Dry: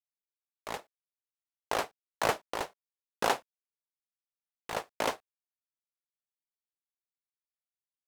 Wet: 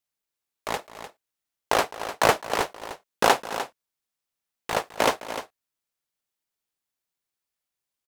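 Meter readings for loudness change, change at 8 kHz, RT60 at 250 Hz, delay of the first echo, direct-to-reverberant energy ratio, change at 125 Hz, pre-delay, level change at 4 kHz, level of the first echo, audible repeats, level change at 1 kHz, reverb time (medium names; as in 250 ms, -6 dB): +8.5 dB, +9.5 dB, no reverb, 210 ms, no reverb, +9.5 dB, no reverb, +9.5 dB, -17.5 dB, 2, +9.5 dB, no reverb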